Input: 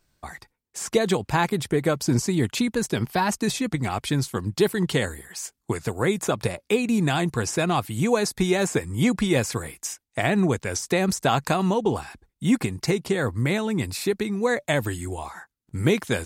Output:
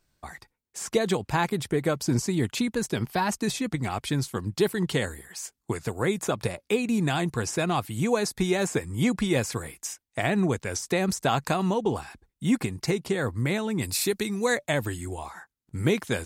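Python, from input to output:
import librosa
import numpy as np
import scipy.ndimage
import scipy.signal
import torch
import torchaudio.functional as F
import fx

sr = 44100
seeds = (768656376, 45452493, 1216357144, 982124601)

y = fx.high_shelf(x, sr, hz=fx.line((13.81, 4600.0), (14.56, 2600.0)), db=11.0, at=(13.81, 14.56), fade=0.02)
y = F.gain(torch.from_numpy(y), -3.0).numpy()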